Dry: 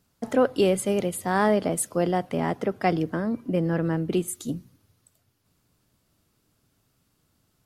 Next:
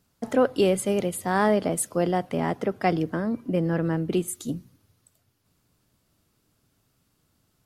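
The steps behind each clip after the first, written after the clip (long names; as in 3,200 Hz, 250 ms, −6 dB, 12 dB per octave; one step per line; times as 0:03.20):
no processing that can be heard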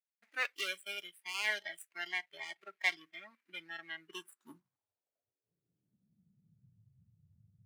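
running median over 41 samples
high-pass filter sweep 2,100 Hz → 100 Hz, 0:03.93–0:06.89
noise reduction from a noise print of the clip's start 20 dB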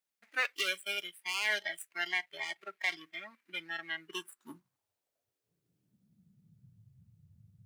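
brickwall limiter −26 dBFS, peak gain reduction 8.5 dB
level +6 dB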